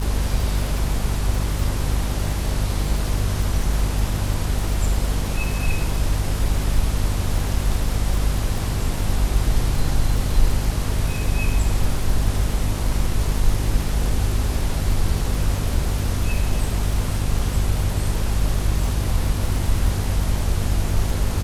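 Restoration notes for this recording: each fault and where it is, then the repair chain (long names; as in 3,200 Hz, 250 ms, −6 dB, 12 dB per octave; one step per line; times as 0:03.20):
surface crackle 48 per second −26 dBFS
mains hum 50 Hz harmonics 5 −24 dBFS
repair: click removal
hum removal 50 Hz, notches 5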